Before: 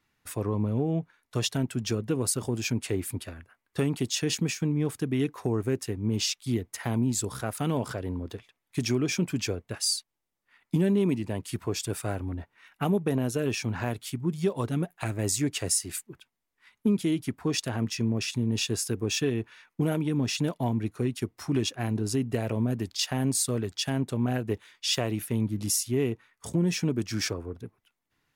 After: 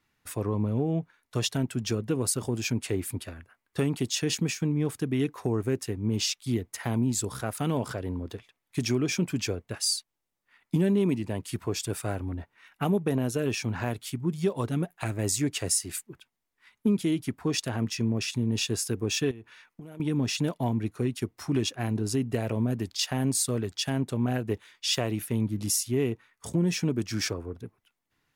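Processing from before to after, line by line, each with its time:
19.31–20.00 s: compression 16:1, threshold -39 dBFS

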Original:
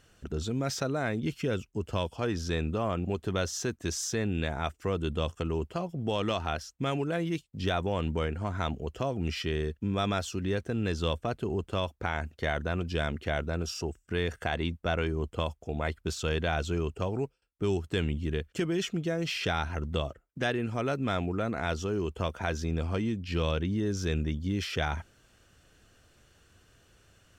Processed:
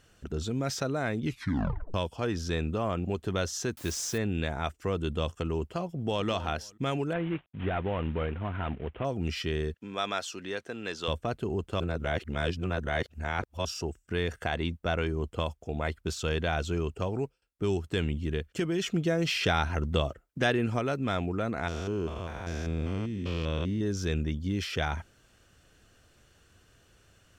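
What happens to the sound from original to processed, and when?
1.25 s: tape stop 0.69 s
3.77–4.18 s: word length cut 8-bit, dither triangular
5.86–6.27 s: echo throw 250 ms, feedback 25%, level -15.5 dB
7.13–9.05 s: CVSD coder 16 kbps
9.74–11.08 s: frequency weighting A
11.80–13.65 s: reverse
18.86–20.79 s: gain +3.5 dB
21.68–23.81 s: spectrogram pixelated in time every 200 ms

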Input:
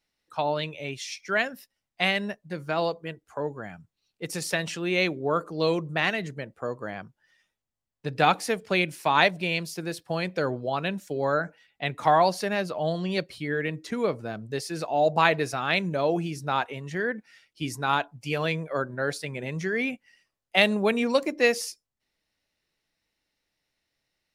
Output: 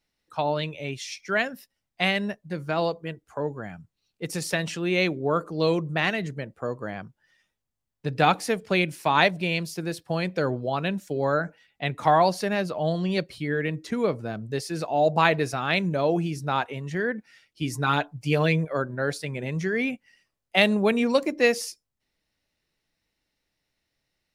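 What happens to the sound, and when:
17.72–18.65 s: comb 6.6 ms
whole clip: bass shelf 290 Hz +5 dB

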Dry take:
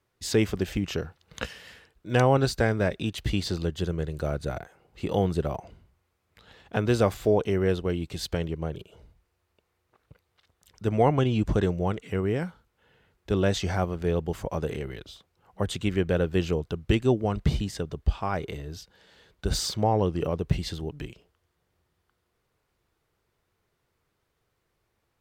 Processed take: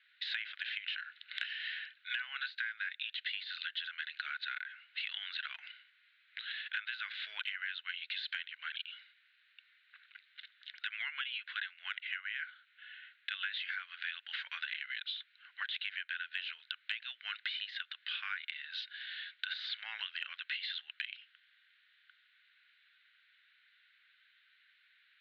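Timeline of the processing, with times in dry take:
10.85–13.72 s: band-pass 630–4100 Hz
whole clip: de-esser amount 100%; Chebyshev band-pass 1.5–4 kHz, order 4; compression 10:1, threshold -52 dBFS; trim +16 dB

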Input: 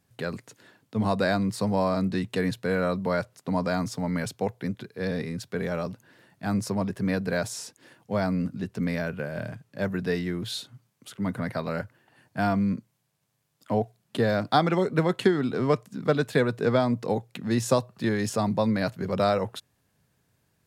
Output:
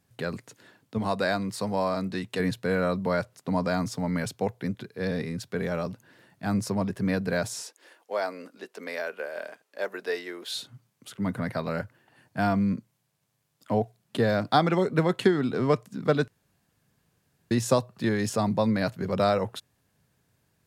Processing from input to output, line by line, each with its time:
0.98–2.40 s: bass shelf 300 Hz -7.5 dB
7.62–10.55 s: high-pass 390 Hz 24 dB/octave
16.28–17.51 s: room tone

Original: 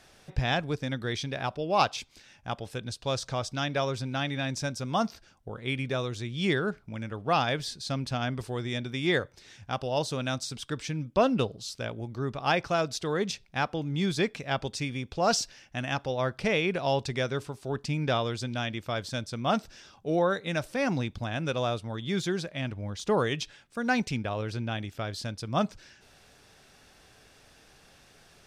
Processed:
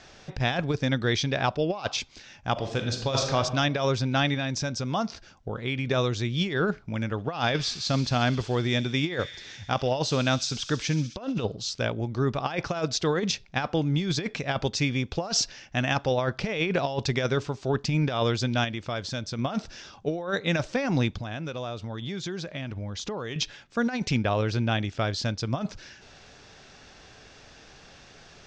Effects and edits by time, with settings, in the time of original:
2.52–3.37 s: reverb throw, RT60 0.91 s, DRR 3.5 dB
4.34–5.87 s: compression 2.5:1, threshold -33 dBFS
7.11–11.41 s: feedback echo behind a high-pass 65 ms, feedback 81%, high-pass 3.9 kHz, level -11 dB
18.64–19.39 s: compression 2:1, threshold -38 dBFS
21.16–23.36 s: compression, threshold -37 dBFS
whole clip: steep low-pass 7.1 kHz 48 dB/octave; compressor with a negative ratio -29 dBFS, ratio -0.5; trim +5 dB

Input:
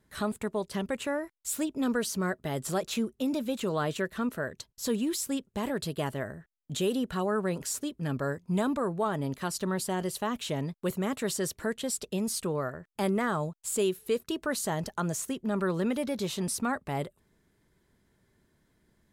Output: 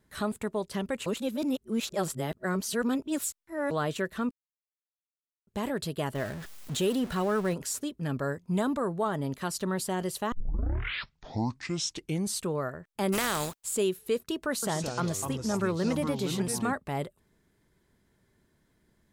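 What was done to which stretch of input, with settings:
1.06–3.71 s: reverse
4.31–5.47 s: mute
6.15–7.54 s: jump at every zero crossing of -37.5 dBFS
8.59–9.25 s: band-stop 2.5 kHz, Q 9.3
10.32 s: tape start 2.15 s
13.12–13.62 s: spectral contrast reduction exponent 0.42
14.50–16.74 s: ever faster or slower copies 125 ms, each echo -4 st, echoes 3, each echo -6 dB

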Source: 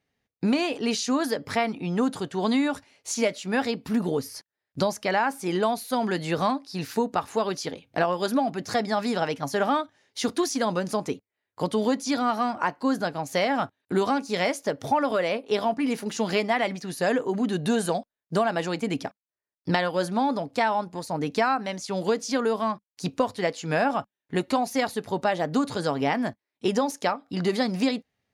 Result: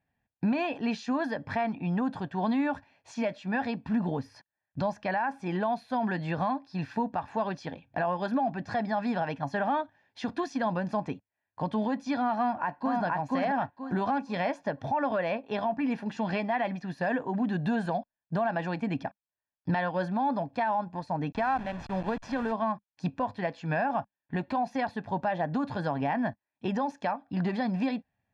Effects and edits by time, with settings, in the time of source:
12.37–13.03 s: echo throw 480 ms, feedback 25%, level 0 dB
21.32–22.52 s: send-on-delta sampling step -31.5 dBFS
whole clip: low-pass 2.2 kHz 12 dB/octave; comb 1.2 ms, depth 62%; peak limiter -17.5 dBFS; trim -2.5 dB

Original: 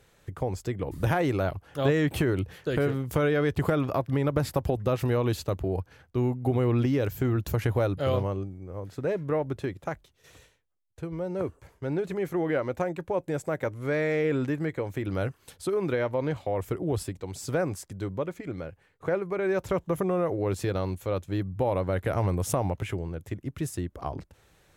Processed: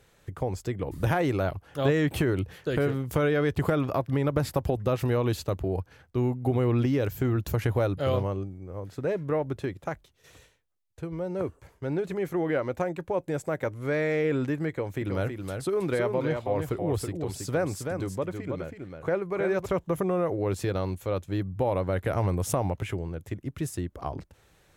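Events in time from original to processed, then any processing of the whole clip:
14.69–19.66 s: delay 323 ms -5.5 dB

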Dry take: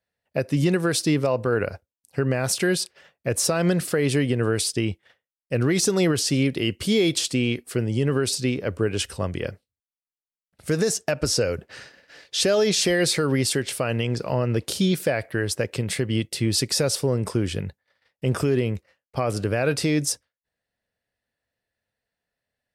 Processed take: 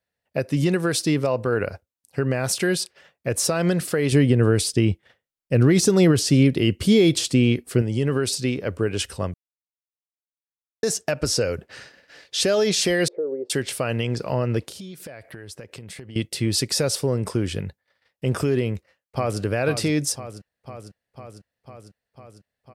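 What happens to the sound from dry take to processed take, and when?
4.12–7.82 s: bass shelf 400 Hz +7.5 dB
9.34–10.83 s: mute
13.08–13.50 s: Butterworth band-pass 460 Hz, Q 2
14.60–16.16 s: compression, threshold -36 dBFS
18.68–19.41 s: echo throw 500 ms, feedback 75%, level -9.5 dB

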